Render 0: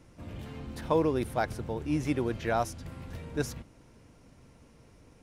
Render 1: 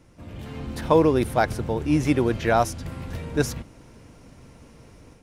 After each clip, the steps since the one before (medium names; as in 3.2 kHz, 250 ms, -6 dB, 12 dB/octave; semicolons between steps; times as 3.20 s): level rider gain up to 7 dB; trim +1.5 dB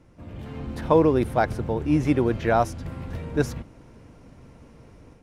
treble shelf 2.9 kHz -9 dB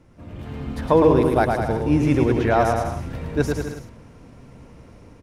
bouncing-ball echo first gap 110 ms, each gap 0.8×, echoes 5; trim +1.5 dB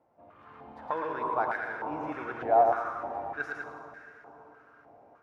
plate-style reverb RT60 4.2 s, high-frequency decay 0.6×, DRR 5 dB; step-sequenced band-pass 3.3 Hz 740–1700 Hz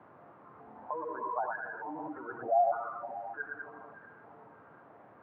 de-hum 90.72 Hz, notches 39; spectral gate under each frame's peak -10 dB strong; band noise 100–1300 Hz -54 dBFS; trim -3.5 dB